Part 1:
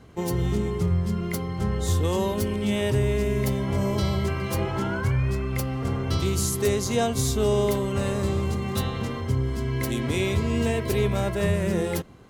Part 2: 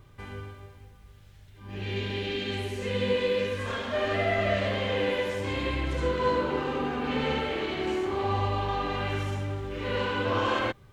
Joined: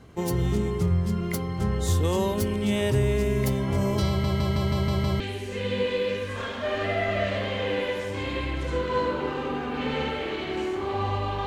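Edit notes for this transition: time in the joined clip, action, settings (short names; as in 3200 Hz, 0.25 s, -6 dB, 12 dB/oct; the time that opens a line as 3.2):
part 1
4.08 stutter in place 0.16 s, 7 plays
5.2 switch to part 2 from 2.5 s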